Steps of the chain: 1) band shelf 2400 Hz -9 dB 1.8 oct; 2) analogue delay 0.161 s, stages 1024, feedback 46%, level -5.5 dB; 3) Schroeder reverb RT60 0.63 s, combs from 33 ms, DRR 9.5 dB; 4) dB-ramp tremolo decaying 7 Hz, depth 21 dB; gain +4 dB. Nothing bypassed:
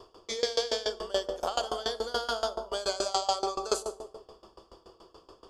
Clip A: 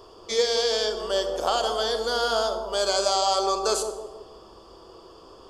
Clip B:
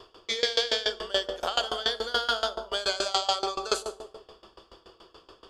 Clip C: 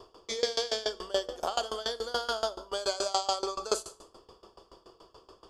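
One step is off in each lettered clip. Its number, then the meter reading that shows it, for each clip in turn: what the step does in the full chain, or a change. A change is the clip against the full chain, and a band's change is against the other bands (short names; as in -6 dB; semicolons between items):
4, momentary loudness spread change -3 LU; 1, 2 kHz band +8.0 dB; 2, momentary loudness spread change -5 LU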